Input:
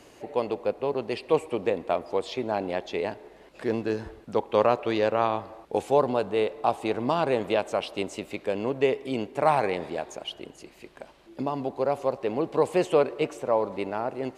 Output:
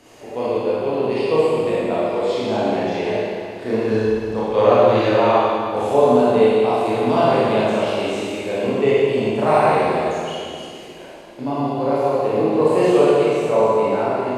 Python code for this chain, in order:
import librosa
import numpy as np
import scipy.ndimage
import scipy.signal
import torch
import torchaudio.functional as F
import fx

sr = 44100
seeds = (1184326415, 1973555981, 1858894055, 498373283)

y = fx.reverse_delay(x, sr, ms=171, wet_db=-11.5)
y = fx.hpss(y, sr, part='percussive', gain_db=-6)
y = fx.rev_schroeder(y, sr, rt60_s=2.1, comb_ms=25, drr_db=-9.0)
y = y * 10.0 ** (2.0 / 20.0)